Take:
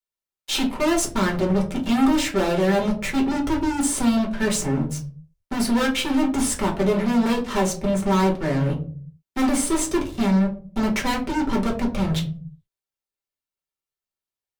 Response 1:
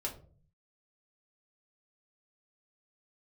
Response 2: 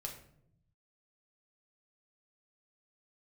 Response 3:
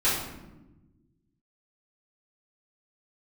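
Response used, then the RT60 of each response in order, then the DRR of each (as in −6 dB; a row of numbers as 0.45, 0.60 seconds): 1; 0.45, 0.70, 1.1 seconds; −2.0, 0.5, −12.5 decibels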